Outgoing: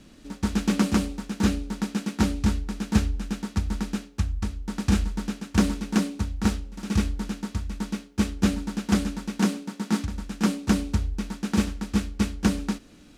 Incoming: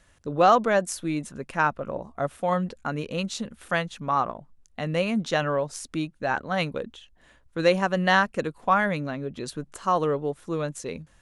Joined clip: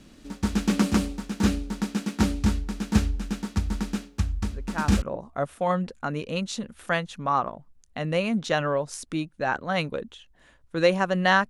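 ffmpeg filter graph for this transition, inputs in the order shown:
-filter_complex "[1:a]asplit=2[s0][s1];[0:a]apad=whole_dur=11.49,atrim=end=11.49,atrim=end=5.022[s2];[s1]atrim=start=1.838:end=8.31[s3];[s0]atrim=start=1.32:end=1.84,asetpts=PTS-STARTPTS,volume=0.398,afade=t=in:d=0.004:c=hsin,afade=t=out:st=0.516:d=0.004:c=hsin,adelay=4500[s4];[s2][s3]acrossfade=d=0.004:c1=hsin:c2=hsin[s5];[s5][s4]amix=inputs=2:normalize=0"

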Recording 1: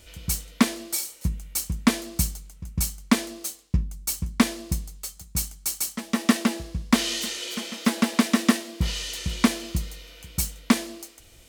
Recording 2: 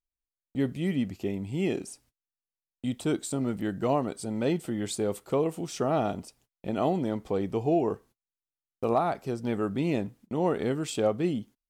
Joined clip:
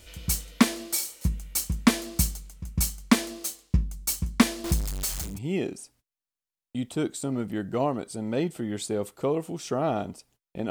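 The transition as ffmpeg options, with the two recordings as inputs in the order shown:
-filter_complex "[0:a]asettb=1/sr,asplit=3[s0][s1][s2];[s0]atrim=end=4.644[s3];[s1]atrim=start=4.64:end=5.39,asetpts=PTS-STARTPTS,afade=t=in:d=0.004:c=qsin,afade=t=out:st=0.746:d=0.004:c=qsin,aeval=exprs='val(0)+0.5*0.0422*sgn(val(0))':c=same[s4];[s2]atrim=start=5.386[s5];[s3][s4]acrossfade=d=0.004:c1=hsin:c2=qsin[s6];[s6][s5]acrossfade=d=0.004:c1=qsin:c2=hsin,apad=whole_dur=10.7,atrim=end=10.7,atrim=end=5.39,asetpts=PTS-STARTPTS[s7];[1:a]atrim=start=1.3:end=6.79,asetpts=PTS-STARTPTS[s8];[s7][s8]acrossfade=d=0.18:c1=tri:c2=tri"

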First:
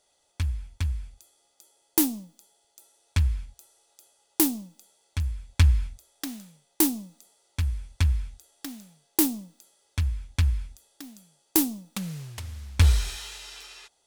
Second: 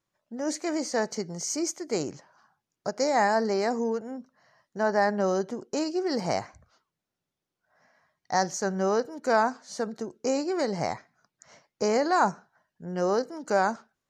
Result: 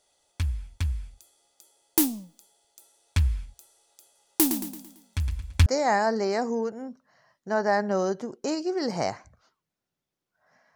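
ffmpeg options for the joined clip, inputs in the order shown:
-filter_complex "[0:a]asettb=1/sr,asplit=3[s0][s1][s2];[s0]atrim=end=4.044[s3];[s1]atrim=start=4.04:end=5.66,asetpts=PTS-STARTPTS,afade=t=in:d=0.004:c=qsin,afade=t=out:st=1.616:d=0.004:c=qsin,aecho=1:1:112|224|336|448|560:0.376|0.169|0.0761|0.0342|0.0154,atrim=end_sample=71442[s4];[s2]atrim=start=5.656[s5];[s3][s4]acrossfade=d=0.004:c1=hsin:c2=qsin[s6];[s6][s5]acrossfade=d=0.004:c1=qsin:c2=hsin,apad=whole_dur=10.75,atrim=end=10.75,atrim=end=5.662[s7];[1:a]atrim=start=2.948:end=8.04[s8];[s7][s8]acrossfade=d=0.004:c1=hsin:c2=hsin"

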